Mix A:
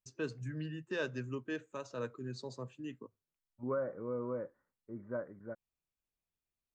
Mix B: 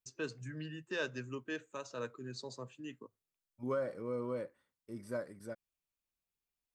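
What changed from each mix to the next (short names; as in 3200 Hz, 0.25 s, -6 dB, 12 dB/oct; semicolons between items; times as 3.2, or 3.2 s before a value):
first voice: add tilt +1.5 dB/oct; second voice: remove steep low-pass 1700 Hz 36 dB/oct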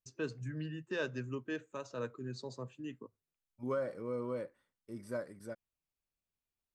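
first voice: add tilt -1.5 dB/oct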